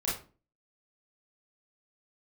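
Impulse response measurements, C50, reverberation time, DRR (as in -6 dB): 4.0 dB, 0.35 s, -7.5 dB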